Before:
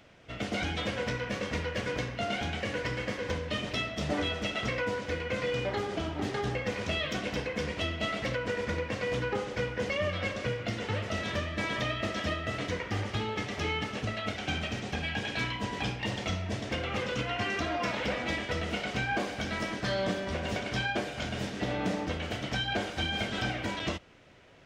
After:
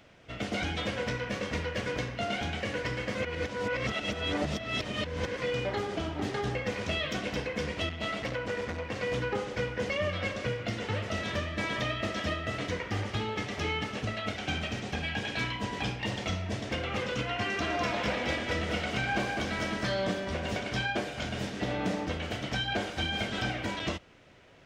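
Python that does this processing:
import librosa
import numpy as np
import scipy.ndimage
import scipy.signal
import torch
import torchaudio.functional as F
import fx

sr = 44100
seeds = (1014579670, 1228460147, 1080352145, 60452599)

y = fx.transformer_sat(x, sr, knee_hz=520.0, at=(7.89, 8.96))
y = fx.echo_single(y, sr, ms=201, db=-4.5, at=(17.61, 19.86), fade=0.02)
y = fx.edit(y, sr, fx.reverse_span(start_s=3.15, length_s=2.25), tone=tone)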